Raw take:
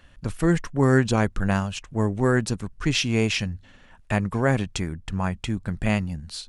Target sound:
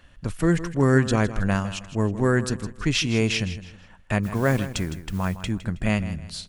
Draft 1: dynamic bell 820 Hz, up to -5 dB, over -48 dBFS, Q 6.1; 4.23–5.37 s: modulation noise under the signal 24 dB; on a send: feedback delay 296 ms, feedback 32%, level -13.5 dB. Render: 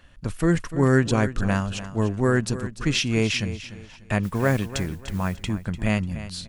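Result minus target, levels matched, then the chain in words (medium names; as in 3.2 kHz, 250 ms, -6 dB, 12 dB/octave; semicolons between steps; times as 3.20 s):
echo 136 ms late
dynamic bell 820 Hz, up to -5 dB, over -48 dBFS, Q 6.1; 4.23–5.37 s: modulation noise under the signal 24 dB; on a send: feedback delay 160 ms, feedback 32%, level -13.5 dB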